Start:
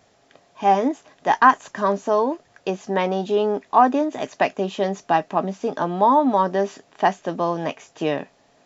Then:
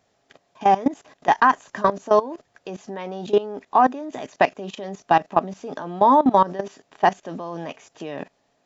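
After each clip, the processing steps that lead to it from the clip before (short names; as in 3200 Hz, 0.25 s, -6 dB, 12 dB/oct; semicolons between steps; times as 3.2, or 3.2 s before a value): level quantiser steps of 18 dB; gain +4.5 dB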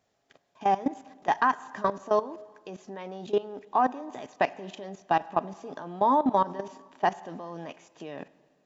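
reverb RT60 1.6 s, pre-delay 39 ms, DRR 19 dB; gain -7.5 dB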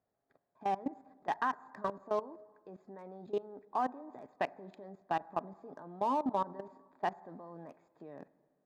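Wiener smoothing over 15 samples; gain -9 dB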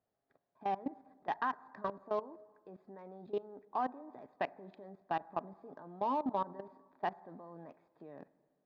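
LPF 4800 Hz 24 dB/oct; gain -2 dB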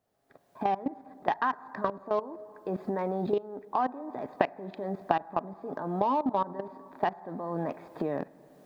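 recorder AGC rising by 26 dB/s; gain +6.5 dB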